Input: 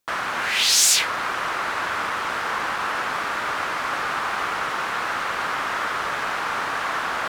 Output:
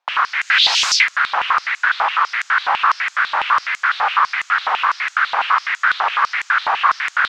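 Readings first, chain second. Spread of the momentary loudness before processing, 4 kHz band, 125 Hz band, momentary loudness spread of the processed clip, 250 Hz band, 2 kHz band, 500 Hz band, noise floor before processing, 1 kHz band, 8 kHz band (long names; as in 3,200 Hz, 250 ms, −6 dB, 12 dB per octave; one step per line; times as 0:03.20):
9 LU, +5.0 dB, below −10 dB, 5 LU, below −10 dB, +8.0 dB, −3.0 dB, −27 dBFS, +7.5 dB, −6.0 dB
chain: high-frequency loss of the air 200 metres
high-pass on a step sequencer 12 Hz 820–7,000 Hz
level +5.5 dB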